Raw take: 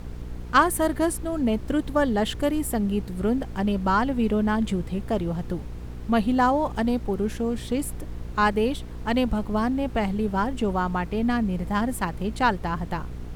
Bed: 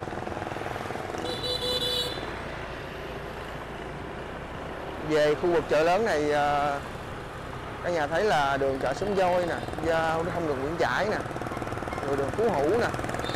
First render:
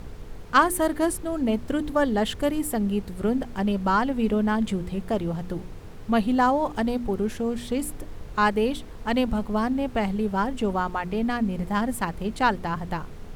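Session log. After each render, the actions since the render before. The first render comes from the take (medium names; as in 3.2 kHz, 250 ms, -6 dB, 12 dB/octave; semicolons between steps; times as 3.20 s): de-hum 60 Hz, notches 6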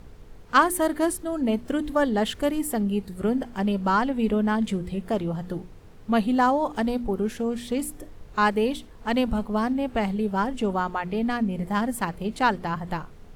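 noise print and reduce 7 dB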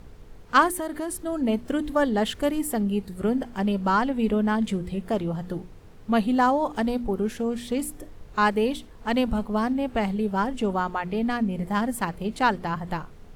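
0.68–1.19 s: compression, threshold -26 dBFS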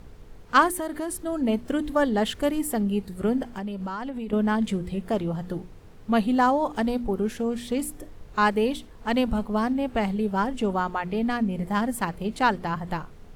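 3.50–4.33 s: compression 16:1, threshold -28 dBFS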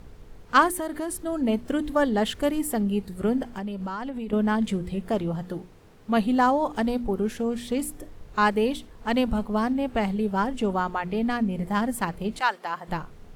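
5.43–6.17 s: bass shelf 110 Hz -9.5 dB; 12.39–12.87 s: high-pass 1 kHz -> 370 Hz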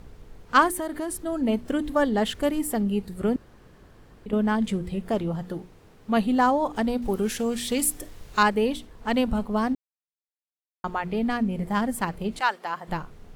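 3.36–4.26 s: room tone; 7.02–8.43 s: treble shelf 2.1 kHz +11.5 dB; 9.75–10.84 s: mute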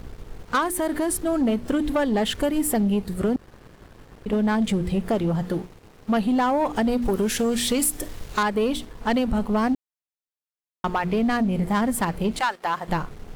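compression 6:1, threshold -24 dBFS, peak gain reduction 11.5 dB; waveshaping leveller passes 2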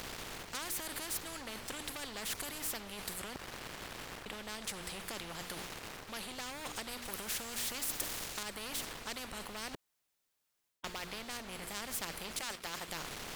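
reverse; compression 6:1, threshold -29 dBFS, peak gain reduction 11 dB; reverse; spectrum-flattening compressor 4:1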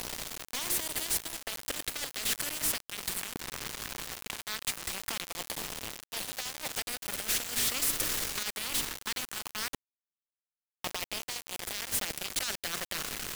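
LFO notch saw down 0.19 Hz 430–1600 Hz; companded quantiser 2-bit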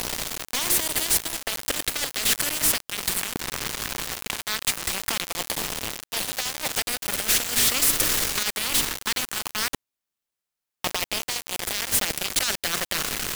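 trim +9 dB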